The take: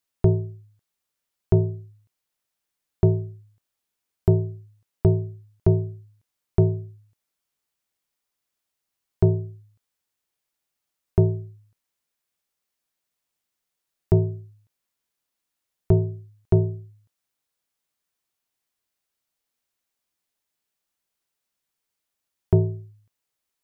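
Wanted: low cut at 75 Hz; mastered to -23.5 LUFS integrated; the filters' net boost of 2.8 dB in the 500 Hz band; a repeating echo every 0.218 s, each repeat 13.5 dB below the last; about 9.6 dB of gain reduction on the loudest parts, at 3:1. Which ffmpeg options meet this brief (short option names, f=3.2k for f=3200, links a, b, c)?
-af "highpass=75,equalizer=f=500:t=o:g=4.5,acompressor=threshold=-25dB:ratio=3,aecho=1:1:218|436:0.211|0.0444,volume=9.5dB"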